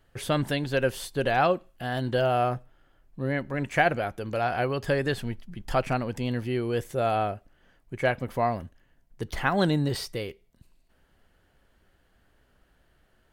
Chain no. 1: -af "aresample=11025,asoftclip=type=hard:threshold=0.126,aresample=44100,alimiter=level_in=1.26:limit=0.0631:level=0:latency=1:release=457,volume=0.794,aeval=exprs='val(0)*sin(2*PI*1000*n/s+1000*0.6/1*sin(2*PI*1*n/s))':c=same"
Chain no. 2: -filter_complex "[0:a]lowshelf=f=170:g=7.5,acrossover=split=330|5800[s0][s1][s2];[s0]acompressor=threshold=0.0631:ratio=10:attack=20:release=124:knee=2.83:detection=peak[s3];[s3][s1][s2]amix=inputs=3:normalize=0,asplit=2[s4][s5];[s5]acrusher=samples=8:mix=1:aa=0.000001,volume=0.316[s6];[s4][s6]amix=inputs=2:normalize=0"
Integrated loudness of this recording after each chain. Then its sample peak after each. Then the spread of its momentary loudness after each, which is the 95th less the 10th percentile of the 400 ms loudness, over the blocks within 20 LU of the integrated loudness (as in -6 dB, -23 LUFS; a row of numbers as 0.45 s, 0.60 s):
-38.0 LUFS, -24.5 LUFS; -26.0 dBFS, -5.0 dBFS; 8 LU, 11 LU